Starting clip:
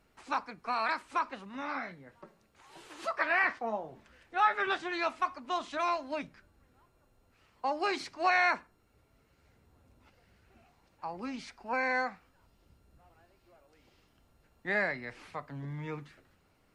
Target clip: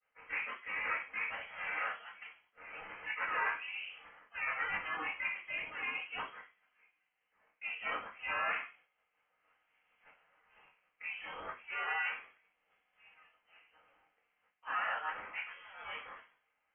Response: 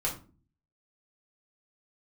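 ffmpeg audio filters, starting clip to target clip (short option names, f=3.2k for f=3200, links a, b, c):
-filter_complex "[0:a]aemphasis=mode=production:type=50fm,agate=range=-33dB:threshold=-56dB:ratio=3:detection=peak,asplit=2[a][b];[b]asoftclip=type=tanh:threshold=-24.5dB,volume=-5dB[c];[a][c]amix=inputs=2:normalize=0,asplit=3[d][e][f];[e]asetrate=55563,aresample=44100,atempo=0.793701,volume=-9dB[g];[f]asetrate=58866,aresample=44100,atempo=0.749154,volume=-2dB[h];[d][g][h]amix=inputs=3:normalize=0,areverse,acompressor=threshold=-37dB:ratio=5,areverse,highpass=1.4k[i];[1:a]atrim=start_sample=2205[j];[i][j]afir=irnorm=-1:irlink=0,lowpass=f=3k:t=q:w=0.5098,lowpass=f=3k:t=q:w=0.6013,lowpass=f=3k:t=q:w=0.9,lowpass=f=3k:t=q:w=2.563,afreqshift=-3500"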